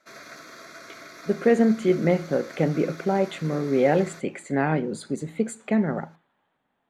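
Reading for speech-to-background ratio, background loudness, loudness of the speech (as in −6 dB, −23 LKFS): 19.0 dB, −43.5 LKFS, −24.5 LKFS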